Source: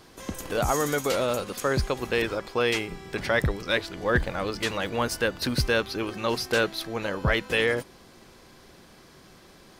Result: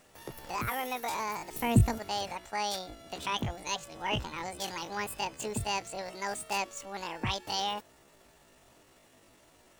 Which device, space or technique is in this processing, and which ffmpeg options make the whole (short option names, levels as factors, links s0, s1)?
chipmunk voice: -filter_complex "[0:a]asplit=3[s0][s1][s2];[s0]afade=t=out:st=1.53:d=0.02[s3];[s1]bass=f=250:g=15,treble=f=4000:g=7,afade=t=in:st=1.53:d=0.02,afade=t=out:st=1.98:d=0.02[s4];[s2]afade=t=in:st=1.98:d=0.02[s5];[s3][s4][s5]amix=inputs=3:normalize=0,asetrate=76340,aresample=44100,atempo=0.577676,volume=0.376"